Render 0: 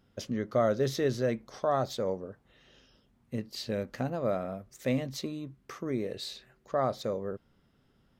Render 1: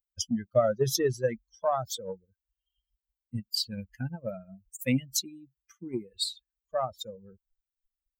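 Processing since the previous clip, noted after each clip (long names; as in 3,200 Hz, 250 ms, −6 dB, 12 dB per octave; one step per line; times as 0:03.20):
spectral dynamics exaggerated over time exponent 3
bass and treble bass +2 dB, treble +14 dB
transient designer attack +5 dB, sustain 0 dB
level +3.5 dB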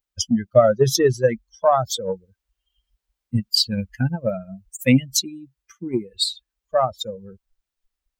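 high-shelf EQ 9,300 Hz −8.5 dB
in parallel at −0.5 dB: speech leveller 2 s
on the sum: level +4.5 dB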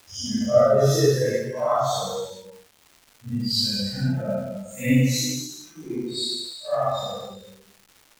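random phases in long frames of 200 ms
reverb whose tail is shaped and stops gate 480 ms falling, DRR −1.5 dB
surface crackle 530 per second −34 dBFS
level −6.5 dB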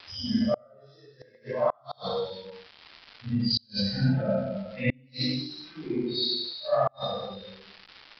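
downsampling to 11,025 Hz
gate with flip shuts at −14 dBFS, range −37 dB
one half of a high-frequency compander encoder only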